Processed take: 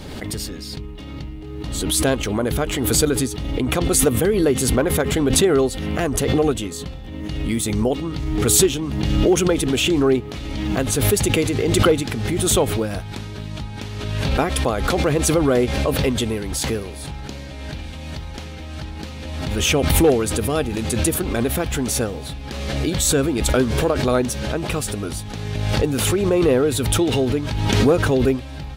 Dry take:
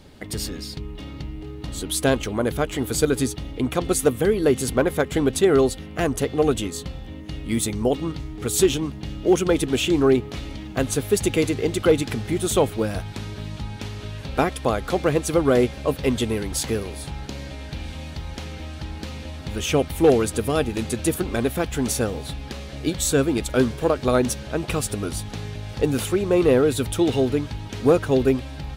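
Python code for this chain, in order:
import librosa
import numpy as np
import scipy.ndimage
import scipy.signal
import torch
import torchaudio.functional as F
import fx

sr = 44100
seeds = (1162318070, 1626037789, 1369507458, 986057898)

y = fx.pre_swell(x, sr, db_per_s=29.0)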